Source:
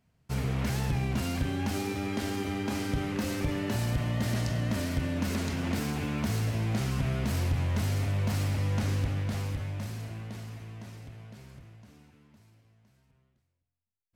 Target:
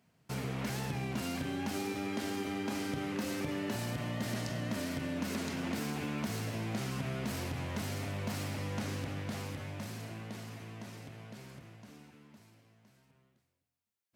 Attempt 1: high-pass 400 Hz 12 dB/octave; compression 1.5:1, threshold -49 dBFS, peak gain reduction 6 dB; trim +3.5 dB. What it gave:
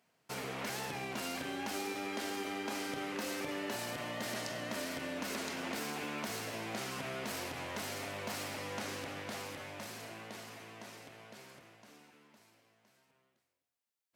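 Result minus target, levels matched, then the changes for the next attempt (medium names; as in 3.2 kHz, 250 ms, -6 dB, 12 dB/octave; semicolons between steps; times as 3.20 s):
125 Hz band -10.0 dB
change: high-pass 160 Hz 12 dB/octave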